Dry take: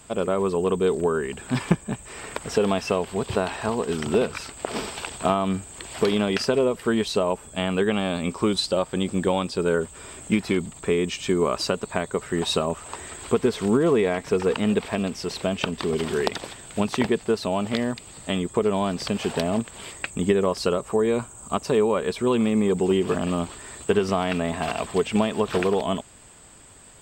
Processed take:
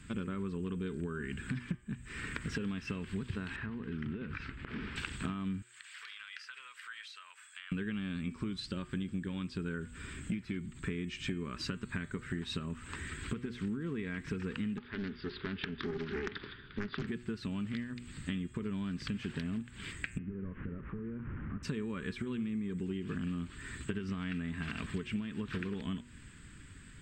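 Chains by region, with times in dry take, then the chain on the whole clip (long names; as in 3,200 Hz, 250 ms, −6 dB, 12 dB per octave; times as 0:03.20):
0:03.56–0:04.96: low-pass filter 2,600 Hz + downward compressor 4 to 1, threshold −33 dBFS
0:05.62–0:07.72: high-pass filter 1,200 Hz 24 dB per octave + downward compressor 5 to 1, threshold −41 dBFS
0:14.77–0:17.07: Chebyshev low-pass with heavy ripple 4,900 Hz, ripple 9 dB + parametric band 410 Hz +13 dB 0.32 octaves + highs frequency-modulated by the lows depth 0.77 ms
0:20.18–0:21.63: linear delta modulator 16 kbit/s, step −33.5 dBFS + low-pass filter 1,200 Hz + downward compressor 4 to 1, threshold −36 dBFS
whole clip: drawn EQ curve 140 Hz 0 dB, 280 Hz −3 dB, 700 Hz −29 dB, 1,600 Hz −2 dB, 13,000 Hz −22 dB; downward compressor 12 to 1, threshold −37 dBFS; hum removal 120.9 Hz, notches 27; level +3.5 dB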